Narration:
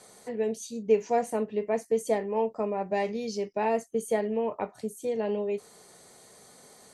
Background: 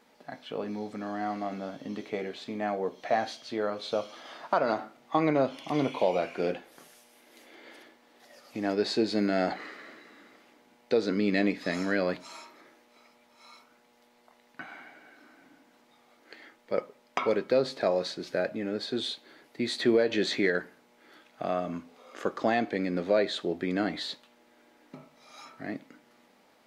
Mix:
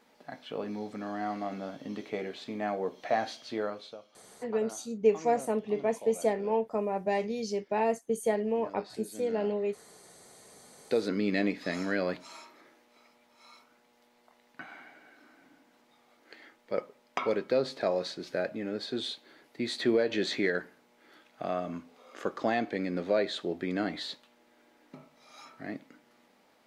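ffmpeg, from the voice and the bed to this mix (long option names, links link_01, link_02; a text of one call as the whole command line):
ffmpeg -i stem1.wav -i stem2.wav -filter_complex "[0:a]adelay=4150,volume=-1dB[link_01];[1:a]volume=14.5dB,afade=type=out:start_time=3.58:duration=0.39:silence=0.141254,afade=type=in:start_time=10.26:duration=0.59:silence=0.158489[link_02];[link_01][link_02]amix=inputs=2:normalize=0" out.wav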